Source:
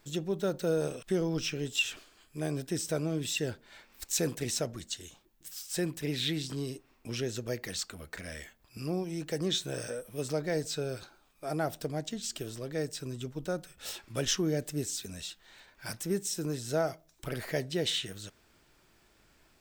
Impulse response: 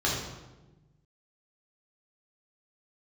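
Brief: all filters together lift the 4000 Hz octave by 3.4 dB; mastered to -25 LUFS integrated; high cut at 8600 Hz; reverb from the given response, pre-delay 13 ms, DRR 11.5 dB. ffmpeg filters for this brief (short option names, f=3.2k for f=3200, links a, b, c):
-filter_complex "[0:a]lowpass=8.6k,equalizer=f=4k:t=o:g=4.5,asplit=2[a][b];[1:a]atrim=start_sample=2205,adelay=13[c];[b][c]afir=irnorm=-1:irlink=0,volume=-23dB[d];[a][d]amix=inputs=2:normalize=0,volume=8dB"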